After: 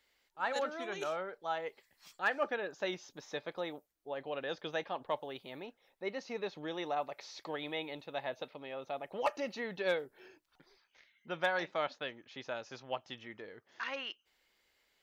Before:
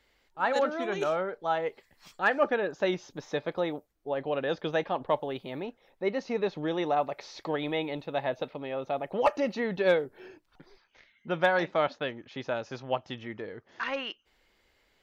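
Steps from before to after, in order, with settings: tilt +2 dB/oct; gain -7.5 dB

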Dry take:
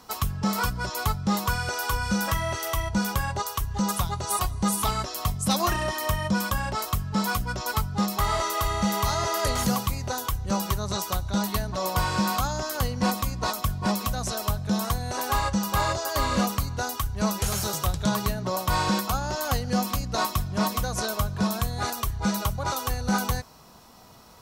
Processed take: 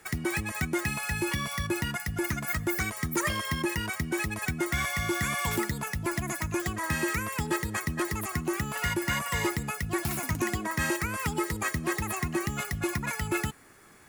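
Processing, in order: speed mistake 45 rpm record played at 78 rpm; gain -4 dB

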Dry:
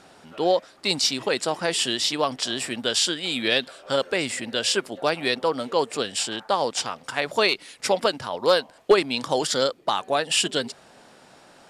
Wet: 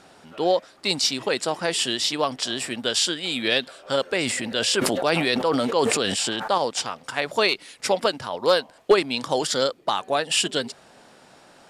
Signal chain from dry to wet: 4.16–6.58 sustainer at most 23 dB/s

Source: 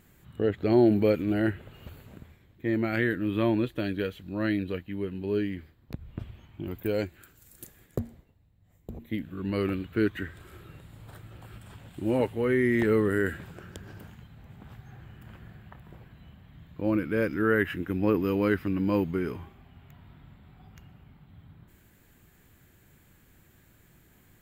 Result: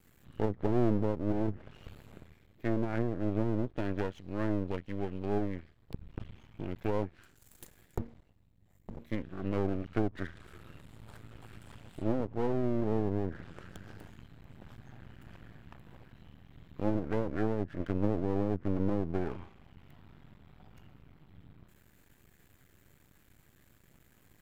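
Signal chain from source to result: treble ducked by the level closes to 310 Hz, closed at -21 dBFS; half-wave rectifier

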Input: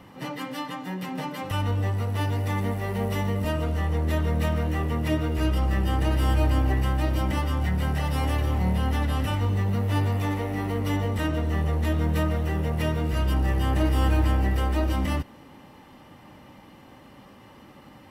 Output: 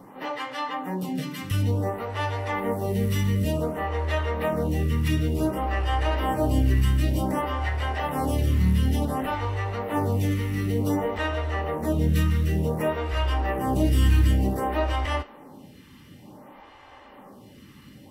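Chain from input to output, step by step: on a send at -7 dB: HPF 330 Hz 24 dB/oct + reverb, pre-delay 3 ms; on the sum: photocell phaser 0.55 Hz; gain +4 dB

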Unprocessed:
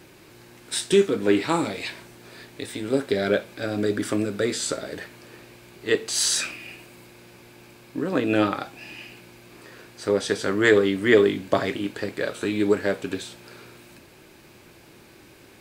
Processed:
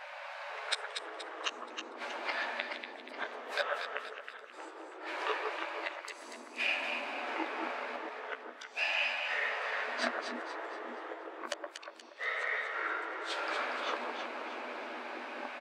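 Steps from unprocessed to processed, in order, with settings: low-pass opened by the level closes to 2000 Hz, open at -21.5 dBFS; in parallel at +1 dB: compressor 6:1, threshold -35 dBFS, peak gain reduction 21.5 dB; on the sum: flipped gate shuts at -20 dBFS, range -42 dB; brick-wall FIR high-pass 530 Hz; doubler 12 ms -7.5 dB; on a send: echo with dull and thin repeats by turns 0.119 s, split 1600 Hz, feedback 66%, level -2.5 dB; on the sum: echoes that change speed 0.496 s, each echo -5 st, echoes 3; gain +4 dB

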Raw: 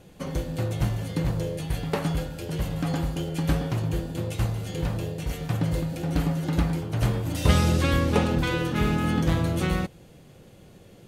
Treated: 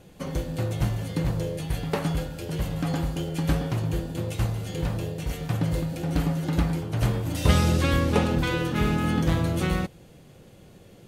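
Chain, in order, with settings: WMA 128 kbps 44100 Hz

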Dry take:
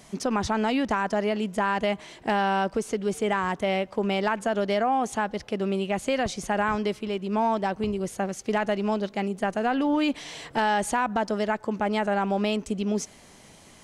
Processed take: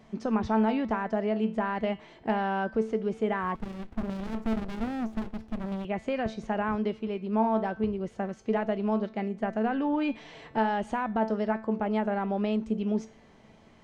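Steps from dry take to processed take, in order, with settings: tape spacing loss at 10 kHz 28 dB; resonator 220 Hz, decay 0.35 s, harmonics all, mix 70%; 3.55–5.85 running maximum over 65 samples; gain +6.5 dB

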